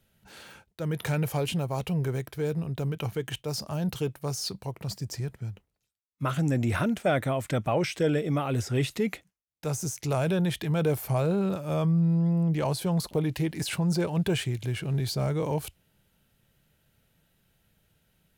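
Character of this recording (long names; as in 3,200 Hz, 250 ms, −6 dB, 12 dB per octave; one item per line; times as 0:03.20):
background noise floor −77 dBFS
spectral slope −6.5 dB per octave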